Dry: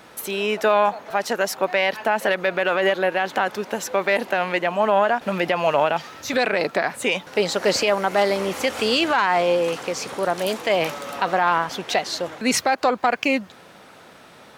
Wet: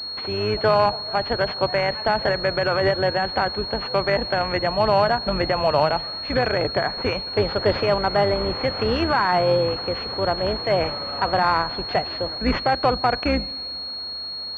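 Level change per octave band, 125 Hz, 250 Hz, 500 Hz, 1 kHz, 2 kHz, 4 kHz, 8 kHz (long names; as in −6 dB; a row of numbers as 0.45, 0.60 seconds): +9.0 dB, 0.0 dB, 0.0 dB, −0.5 dB, −3.5 dB, +4.0 dB, below −20 dB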